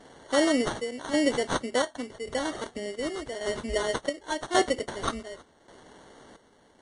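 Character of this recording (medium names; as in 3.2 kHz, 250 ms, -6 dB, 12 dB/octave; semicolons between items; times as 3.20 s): aliases and images of a low sample rate 2.5 kHz, jitter 0%; chopped level 0.88 Hz, depth 65%, duty 60%; MP3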